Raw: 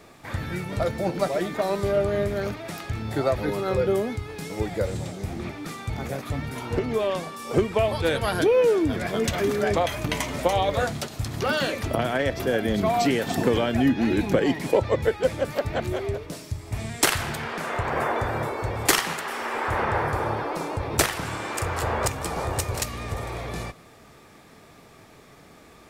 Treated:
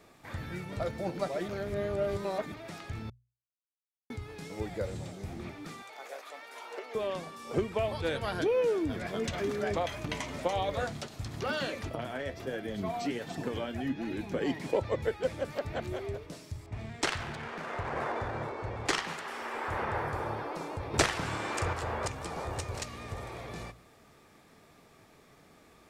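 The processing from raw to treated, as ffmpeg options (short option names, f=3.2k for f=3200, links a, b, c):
-filter_complex "[0:a]asettb=1/sr,asplit=3[a][b][c];[a]atrim=end=5.824[d];[b]atrim=start=5.82:end=6.95,asetpts=PTS-STARTPTS,afade=t=in:d=0.004:c=qsin,afade=t=out:st=1.126:d=0.004:c=qsin,highpass=f=500:w=0.5412,highpass=f=500:w=1.3066[e];[c]atrim=start=6.946[f];[d][e]acrossfade=d=0.004:c1=hsin:c2=qsin[g];[g][f]acrossfade=d=0.004:c1=qsin:c2=hsin,asettb=1/sr,asplit=3[h][i][j];[h]atrim=end=11.894[k];[i]atrim=start=11.89:end=14.4,asetpts=PTS-STARTPTS,afade=t=in:d=0.004:c=qsin,afade=t=out:st=2.506:d=0.004:c=qsin,flanger=delay=5.9:depth=6.4:regen=47:speed=1.4:shape=sinusoidal[l];[j]atrim=start=14.396[m];[k][l]acrossfade=d=0.004:c1=hsin:c2=qsin[n];[n][m]acrossfade=d=0.004:c1=qsin:c2=hsin,asettb=1/sr,asplit=3[o][p][q];[o]atrim=end=16.664[r];[p]atrim=start=16.66:end=19.08,asetpts=PTS-STARTPTS,afade=t=in:d=0.004:c=qsin,afade=t=out:st=2.416:d=0.004:c=qsin,adynamicsmooth=sensitivity=7:basefreq=2.5k[s];[q]atrim=start=19.076[t];[r][s]acrossfade=d=0.004:c1=hsin:c2=qsin[u];[u][t]acrossfade=d=0.004:c1=qsin:c2=hsin,asplit=7[v][w][x][y][z][aa][ab];[v]atrim=end=1.482[ac];[w]atrim=start=1.478:end=2.522,asetpts=PTS-STARTPTS,areverse[ad];[x]atrim=start=2.518:end=3.1,asetpts=PTS-STARTPTS,afade=t=out:st=0.578:d=0.004:c=hsin[ae];[y]atrim=start=3.1:end=4.1,asetpts=PTS-STARTPTS,volume=0[af];[z]atrim=start=4.1:end=20.942,asetpts=PTS-STARTPTS,afade=t=in:d=0.004:c=hsin[ag];[aa]atrim=start=20.938:end=21.732,asetpts=PTS-STARTPTS,volume=5dB[ah];[ab]atrim=start=21.728[ai];[ac][ad]acrossfade=d=0.004:c1=hsin:c2=hsin[aj];[ae][af][ag]concat=n=3:v=0:a=1[ak];[aj][ak]acrossfade=d=0.004:c1=hsin:c2=hsin[al];[al][ah]acrossfade=d=0.004:c1=hsin:c2=hsin[am];[am][ai]acrossfade=d=0.004:c1=hsin:c2=hsin,bandreject=f=60:t=h:w=6,bandreject=f=120:t=h:w=6,acrossover=split=8400[an][ao];[ao]acompressor=threshold=-55dB:ratio=4:attack=1:release=60[ap];[an][ap]amix=inputs=2:normalize=0,volume=-8.5dB"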